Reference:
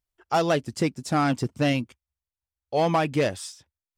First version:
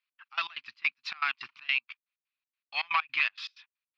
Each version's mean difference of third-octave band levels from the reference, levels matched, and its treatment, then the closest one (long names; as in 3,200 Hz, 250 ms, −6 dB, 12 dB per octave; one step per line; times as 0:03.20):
16.5 dB: elliptic band-pass filter 1,100–4,300 Hz, stop band 40 dB
parametric band 2,500 Hz +12 dB 0.29 octaves
downward compressor 2.5 to 1, threshold −31 dBFS, peak gain reduction 6.5 dB
gate pattern "x.x.x.xx." 160 BPM −24 dB
level +6 dB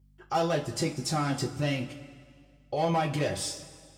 7.5 dB: brickwall limiter −24 dBFS, peak gain reduction 10.5 dB
mains hum 50 Hz, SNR 28 dB
notch comb filter 230 Hz
coupled-rooms reverb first 0.24 s, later 2 s, from −18 dB, DRR 1 dB
level +2.5 dB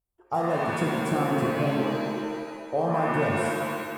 12.0 dB: high-shelf EQ 9,000 Hz −4.5 dB
downward compressor, threshold −24 dBFS, peak gain reduction 6.5 dB
flat-topped bell 3,100 Hz −14 dB 2.5 octaves
reverb with rising layers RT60 1.8 s, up +7 semitones, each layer −2 dB, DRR −0.5 dB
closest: second